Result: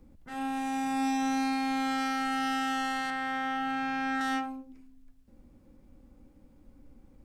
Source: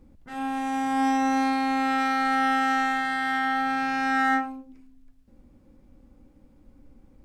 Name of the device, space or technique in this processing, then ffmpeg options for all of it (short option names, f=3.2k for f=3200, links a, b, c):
one-band saturation: -filter_complex "[0:a]highshelf=f=8.5k:g=4,acrossover=split=290|3000[a][b][c];[b]asoftclip=type=tanh:threshold=-28.5dB[d];[a][d][c]amix=inputs=3:normalize=0,asettb=1/sr,asplit=3[e][f][g];[e]atrim=end=3.104[h];[f]atrim=start=3.1:end=4.21,asetpts=PTS-STARTPTS,afade=t=in:d=0.004:c=qsin,afade=t=out:st=1.106:d=0.004:c=qsin,acrossover=split=3000[i][j];[j]acompressor=threshold=-52dB:ratio=4:attack=1:release=60[k];[i][k]amix=inputs=2:normalize=0[l];[g]atrim=start=4.206[m];[h][l]acrossfade=d=0.004:c1=hsin:c2=qsin[n];[n][m]acrossfade=d=0.004:c1=qsin:c2=hsin,volume=-2dB"